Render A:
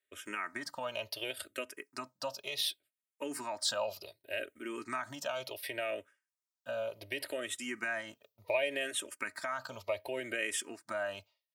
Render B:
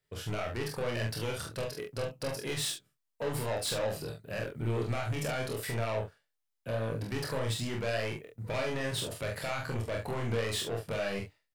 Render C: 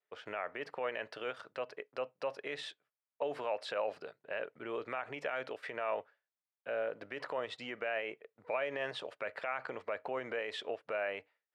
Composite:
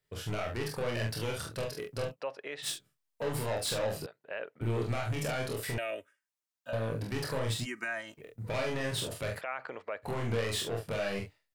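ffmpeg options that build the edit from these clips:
-filter_complex "[2:a]asplit=3[a][b][c];[0:a]asplit=2[d][e];[1:a]asplit=6[f][g][h][i][j][k];[f]atrim=end=2.17[l];[a]atrim=start=2.11:end=2.68[m];[g]atrim=start=2.62:end=4.062[n];[b]atrim=start=4.058:end=4.612[o];[h]atrim=start=4.608:end=5.782[p];[d]atrim=start=5.778:end=6.732[q];[i]atrim=start=6.728:end=7.67[r];[e]atrim=start=7.63:end=8.21[s];[j]atrim=start=8.17:end=9.42[t];[c]atrim=start=9.36:end=10.08[u];[k]atrim=start=10.02[v];[l][m]acrossfade=d=0.06:c1=tri:c2=tri[w];[w][n]acrossfade=d=0.06:c1=tri:c2=tri[x];[x][o]acrossfade=d=0.004:c1=hsin:c2=hsin[y];[y][p]acrossfade=d=0.004:c1=hsin:c2=hsin[z];[z][q]acrossfade=d=0.004:c1=hsin:c2=hsin[aa];[aa][r]acrossfade=d=0.004:c1=hsin:c2=hsin[ab];[ab][s]acrossfade=d=0.04:c1=tri:c2=tri[ac];[ac][t]acrossfade=d=0.04:c1=tri:c2=tri[ad];[ad][u]acrossfade=d=0.06:c1=tri:c2=tri[ae];[ae][v]acrossfade=d=0.06:c1=tri:c2=tri"

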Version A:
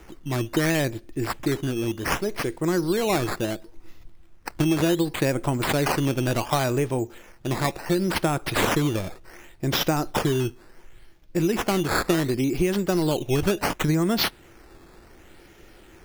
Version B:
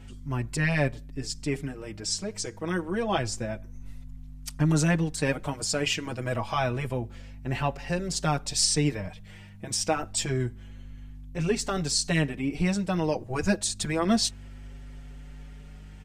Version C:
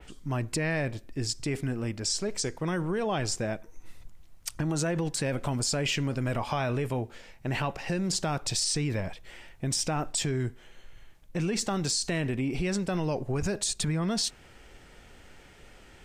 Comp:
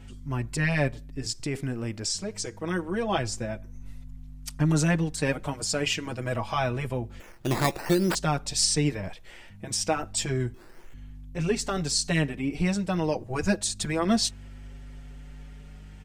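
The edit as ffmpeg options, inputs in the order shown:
-filter_complex "[2:a]asplit=2[a][b];[0:a]asplit=2[c][d];[1:a]asplit=5[e][f][g][h][i];[e]atrim=end=1.262[j];[a]atrim=start=1.258:end=2.152[k];[f]atrim=start=2.148:end=7.202[l];[c]atrim=start=7.198:end=8.152[m];[g]atrim=start=8.148:end=9.032[n];[b]atrim=start=9.028:end=9.502[o];[h]atrim=start=9.498:end=10.542[p];[d]atrim=start=10.538:end=10.942[q];[i]atrim=start=10.938[r];[j][k]acrossfade=d=0.004:c1=hsin:c2=hsin[s];[s][l]acrossfade=d=0.004:c1=hsin:c2=hsin[t];[t][m]acrossfade=d=0.004:c1=hsin:c2=hsin[u];[u][n]acrossfade=d=0.004:c1=hsin:c2=hsin[v];[v][o]acrossfade=d=0.004:c1=hsin:c2=hsin[w];[w][p]acrossfade=d=0.004:c1=hsin:c2=hsin[x];[x][q]acrossfade=d=0.004:c1=hsin:c2=hsin[y];[y][r]acrossfade=d=0.004:c1=hsin:c2=hsin"

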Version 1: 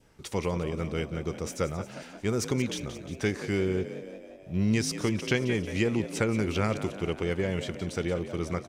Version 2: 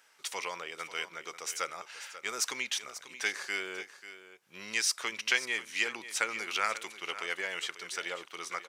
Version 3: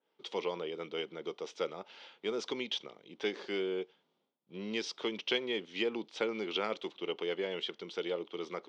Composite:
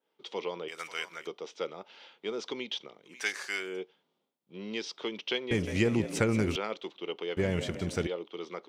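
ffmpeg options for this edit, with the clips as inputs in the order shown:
-filter_complex "[1:a]asplit=2[a][b];[0:a]asplit=2[c][d];[2:a]asplit=5[e][f][g][h][i];[e]atrim=end=0.682[j];[a]atrim=start=0.678:end=1.272[k];[f]atrim=start=1.268:end=3.27[l];[b]atrim=start=3.03:end=3.82[m];[g]atrim=start=3.58:end=5.512[n];[c]atrim=start=5.508:end=6.562[o];[h]atrim=start=6.558:end=7.372[p];[d]atrim=start=7.368:end=8.072[q];[i]atrim=start=8.068[r];[j][k]acrossfade=d=0.004:c1=hsin:c2=hsin[s];[s][l]acrossfade=d=0.004:c1=hsin:c2=hsin[t];[t][m]acrossfade=d=0.24:c1=tri:c2=tri[u];[u][n]acrossfade=d=0.24:c1=tri:c2=tri[v];[v][o]acrossfade=d=0.004:c1=hsin:c2=hsin[w];[w][p]acrossfade=d=0.004:c1=hsin:c2=hsin[x];[x][q]acrossfade=d=0.004:c1=hsin:c2=hsin[y];[y][r]acrossfade=d=0.004:c1=hsin:c2=hsin"

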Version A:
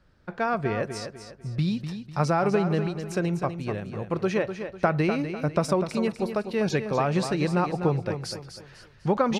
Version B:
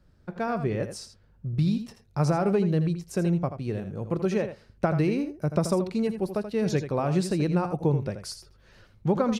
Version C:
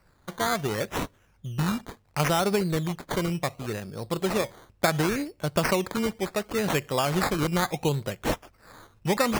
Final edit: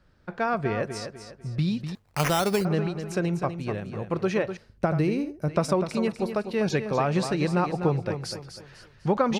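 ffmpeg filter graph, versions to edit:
-filter_complex "[0:a]asplit=3[a][b][c];[a]atrim=end=1.952[d];[2:a]atrim=start=1.948:end=2.652[e];[b]atrim=start=2.648:end=4.572[f];[1:a]atrim=start=4.568:end=5.482[g];[c]atrim=start=5.478[h];[d][e]acrossfade=d=0.004:c1=hsin:c2=hsin[i];[i][f]acrossfade=d=0.004:c1=hsin:c2=hsin[j];[j][g]acrossfade=d=0.004:c1=hsin:c2=hsin[k];[k][h]acrossfade=d=0.004:c1=hsin:c2=hsin"

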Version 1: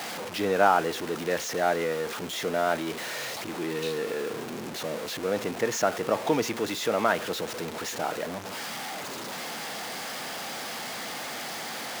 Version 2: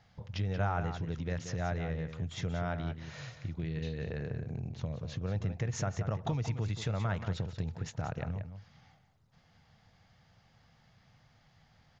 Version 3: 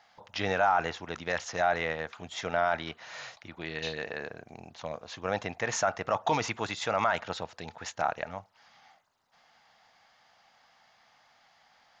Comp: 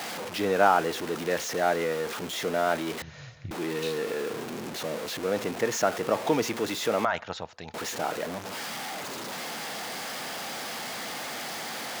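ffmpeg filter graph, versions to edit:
-filter_complex "[0:a]asplit=3[a][b][c];[a]atrim=end=3.022[d];[1:a]atrim=start=3.018:end=3.512[e];[b]atrim=start=3.508:end=7.052[f];[2:a]atrim=start=7.048:end=7.742[g];[c]atrim=start=7.738[h];[d][e]acrossfade=d=0.004:c1=hsin:c2=hsin[i];[i][f]acrossfade=d=0.004:c1=hsin:c2=hsin[j];[j][g]acrossfade=d=0.004:c1=hsin:c2=hsin[k];[k][h]acrossfade=d=0.004:c1=hsin:c2=hsin"

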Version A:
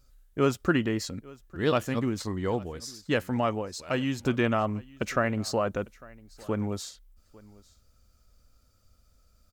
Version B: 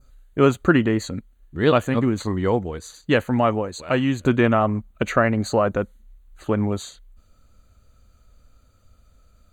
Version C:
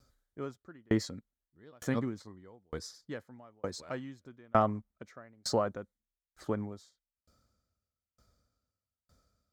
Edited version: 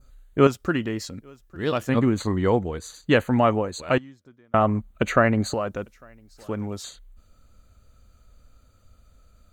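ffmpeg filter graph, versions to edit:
-filter_complex "[0:a]asplit=2[a][b];[1:a]asplit=4[c][d][e][f];[c]atrim=end=0.472[g];[a]atrim=start=0.468:end=1.892[h];[d]atrim=start=1.888:end=3.982[i];[2:a]atrim=start=3.978:end=4.542[j];[e]atrim=start=4.538:end=5.542[k];[b]atrim=start=5.538:end=6.842[l];[f]atrim=start=6.838[m];[g][h]acrossfade=d=0.004:c1=hsin:c2=hsin[n];[n][i]acrossfade=d=0.004:c1=hsin:c2=hsin[o];[o][j]acrossfade=d=0.004:c1=hsin:c2=hsin[p];[p][k]acrossfade=d=0.004:c1=hsin:c2=hsin[q];[q][l]acrossfade=d=0.004:c1=hsin:c2=hsin[r];[r][m]acrossfade=d=0.004:c1=hsin:c2=hsin"

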